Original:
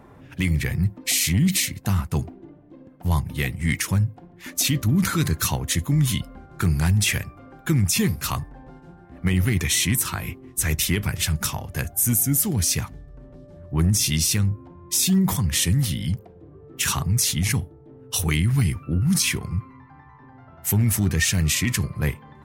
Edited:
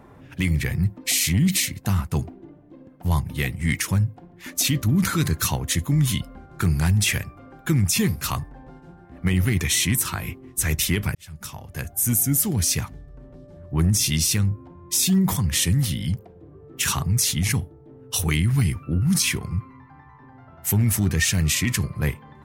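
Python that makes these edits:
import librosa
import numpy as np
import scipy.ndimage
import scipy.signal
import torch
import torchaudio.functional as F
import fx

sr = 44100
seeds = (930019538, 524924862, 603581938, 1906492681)

y = fx.edit(x, sr, fx.fade_in_span(start_s=11.15, length_s=1.03), tone=tone)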